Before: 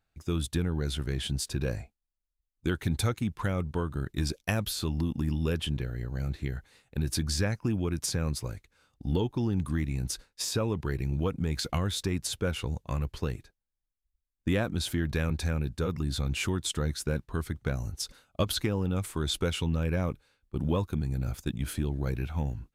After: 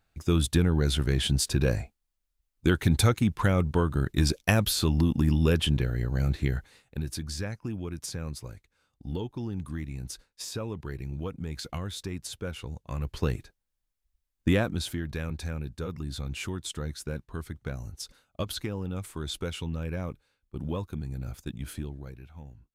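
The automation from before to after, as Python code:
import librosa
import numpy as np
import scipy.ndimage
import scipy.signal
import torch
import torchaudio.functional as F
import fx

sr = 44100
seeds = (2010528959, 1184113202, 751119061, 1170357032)

y = fx.gain(x, sr, db=fx.line((6.56, 6.0), (7.16, -5.5), (12.82, -5.5), (13.26, 4.5), (14.49, 4.5), (15.04, -4.5), (21.79, -4.5), (22.19, -14.5)))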